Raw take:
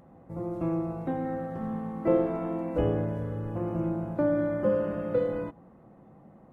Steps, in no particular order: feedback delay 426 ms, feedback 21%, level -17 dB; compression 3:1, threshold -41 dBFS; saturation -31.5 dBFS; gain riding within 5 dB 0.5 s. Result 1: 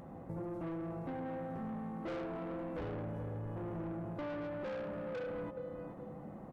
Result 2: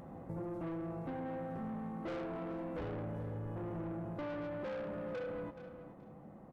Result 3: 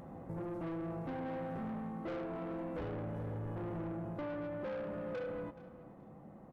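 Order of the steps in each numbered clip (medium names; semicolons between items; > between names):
feedback delay > saturation > gain riding > compression; saturation > gain riding > feedback delay > compression; gain riding > saturation > compression > feedback delay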